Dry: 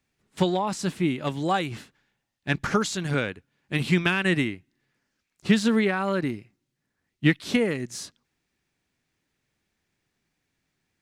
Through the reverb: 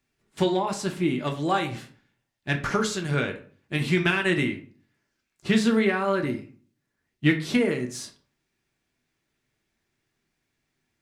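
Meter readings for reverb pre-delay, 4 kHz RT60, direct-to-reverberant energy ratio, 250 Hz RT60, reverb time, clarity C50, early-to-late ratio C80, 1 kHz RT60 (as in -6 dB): 3 ms, 0.30 s, 3.0 dB, 0.60 s, 0.45 s, 11.5 dB, 16.5 dB, 0.45 s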